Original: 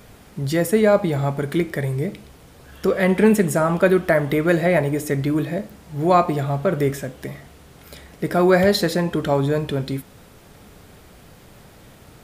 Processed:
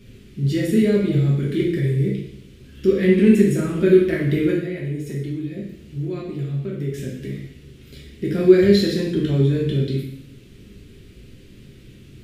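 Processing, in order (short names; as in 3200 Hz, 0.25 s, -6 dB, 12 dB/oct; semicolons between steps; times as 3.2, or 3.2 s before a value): EQ curve 370 Hz 0 dB, 760 Hz -27 dB, 2700 Hz -3 dB, 13000 Hz -15 dB; 4.5–6.94 compressor, threshold -29 dBFS, peak gain reduction 13 dB; plate-style reverb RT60 0.71 s, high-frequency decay 1×, DRR -4 dB; gain -1 dB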